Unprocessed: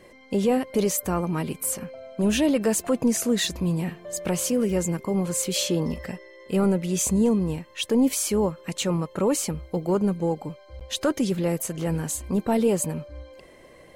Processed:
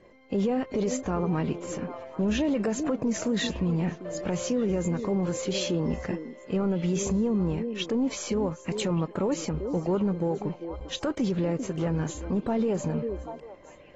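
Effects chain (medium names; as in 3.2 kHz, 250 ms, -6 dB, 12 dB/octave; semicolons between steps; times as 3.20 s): companding laws mixed up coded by A; treble shelf 2.4 kHz -10.5 dB; on a send: repeats whose band climbs or falls 393 ms, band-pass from 340 Hz, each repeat 1.4 oct, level -11 dB; on the sum: peak limiter -23 dBFS, peak gain reduction 10.5 dB; trim +3.5 dB; AAC 24 kbps 32 kHz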